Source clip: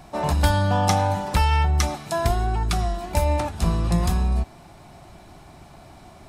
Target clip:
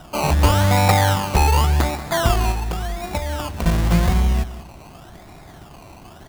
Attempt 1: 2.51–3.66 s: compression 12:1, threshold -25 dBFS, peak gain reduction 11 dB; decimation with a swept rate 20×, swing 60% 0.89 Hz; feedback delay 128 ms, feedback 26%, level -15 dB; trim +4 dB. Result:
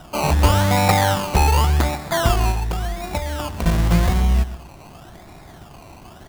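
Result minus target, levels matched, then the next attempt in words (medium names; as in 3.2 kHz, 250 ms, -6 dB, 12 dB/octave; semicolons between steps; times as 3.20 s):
echo 57 ms early
2.51–3.66 s: compression 12:1, threshold -25 dBFS, peak gain reduction 11 dB; decimation with a swept rate 20×, swing 60% 0.89 Hz; feedback delay 185 ms, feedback 26%, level -15 dB; trim +4 dB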